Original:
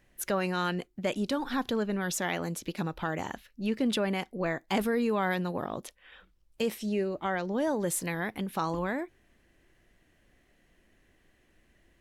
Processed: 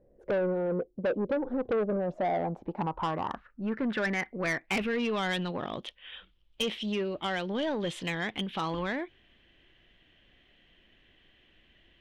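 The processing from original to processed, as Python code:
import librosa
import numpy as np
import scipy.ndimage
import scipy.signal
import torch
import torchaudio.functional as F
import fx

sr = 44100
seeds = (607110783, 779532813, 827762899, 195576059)

y = fx.filter_sweep_lowpass(x, sr, from_hz=510.0, to_hz=3200.0, start_s=1.73, end_s=5.18, q=5.7)
y = 10.0 ** (-24.0 / 20.0) * np.tanh(y / 10.0 ** (-24.0 / 20.0))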